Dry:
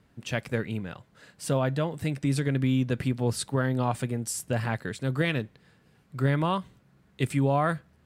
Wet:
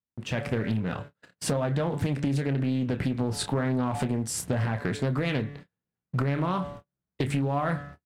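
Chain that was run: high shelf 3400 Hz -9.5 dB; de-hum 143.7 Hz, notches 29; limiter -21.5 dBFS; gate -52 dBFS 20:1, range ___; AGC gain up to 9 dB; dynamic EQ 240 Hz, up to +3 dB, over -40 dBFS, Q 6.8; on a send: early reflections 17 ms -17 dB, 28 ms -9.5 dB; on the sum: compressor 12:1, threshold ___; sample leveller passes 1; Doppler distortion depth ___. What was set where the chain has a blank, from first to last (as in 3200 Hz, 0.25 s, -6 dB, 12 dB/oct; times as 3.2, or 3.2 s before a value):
-35 dB, -26 dBFS, 0.3 ms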